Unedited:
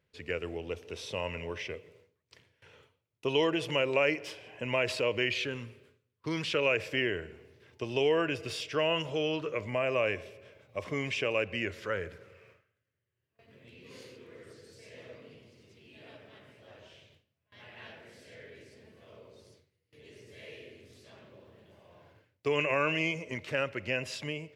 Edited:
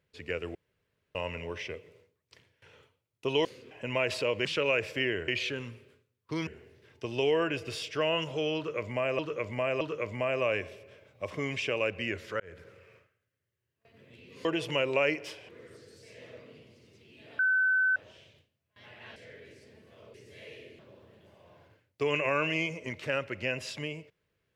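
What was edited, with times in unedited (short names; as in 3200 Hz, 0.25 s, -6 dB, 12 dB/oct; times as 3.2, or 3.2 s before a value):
0.55–1.15 room tone
3.45–4.49 swap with 13.99–14.25
6.42–7.25 move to 5.23
9.35–9.97 loop, 3 plays
11.94–12.2 fade in
16.15–16.72 bleep 1520 Hz -22.5 dBFS
17.92–18.26 cut
19.24–20.15 cut
20.8–21.24 cut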